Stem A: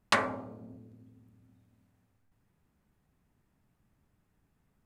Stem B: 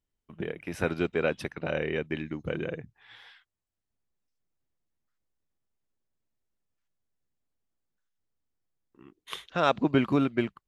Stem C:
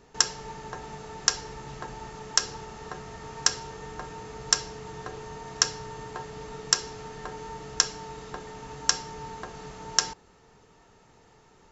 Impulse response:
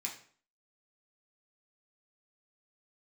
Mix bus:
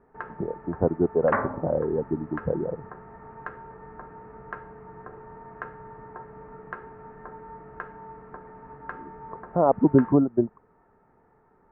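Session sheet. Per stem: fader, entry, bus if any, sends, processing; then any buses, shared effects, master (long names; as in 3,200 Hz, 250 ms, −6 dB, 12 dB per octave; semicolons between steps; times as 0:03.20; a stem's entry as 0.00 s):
+3.0 dB, 1.20 s, no send, no processing
+2.0 dB, 0.00 s, no send, reverb reduction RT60 1.2 s; Butterworth low-pass 960 Hz 36 dB per octave; automatic gain control gain up to 5 dB
−4.0 dB, 0.00 s, send −7.5 dB, no processing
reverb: on, RT60 0.50 s, pre-delay 3 ms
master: Butterworth low-pass 1,700 Hz 36 dB per octave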